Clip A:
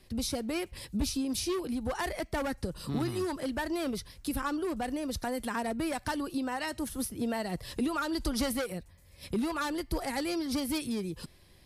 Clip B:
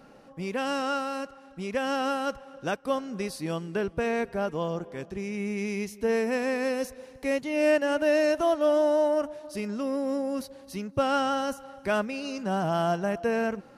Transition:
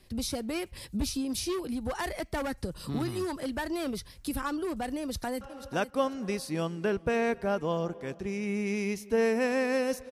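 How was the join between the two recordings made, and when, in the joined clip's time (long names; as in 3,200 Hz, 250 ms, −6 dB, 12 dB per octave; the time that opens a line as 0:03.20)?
clip A
0:05.00–0:05.41: delay throw 490 ms, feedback 25%, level −11.5 dB
0:05.41: continue with clip B from 0:02.32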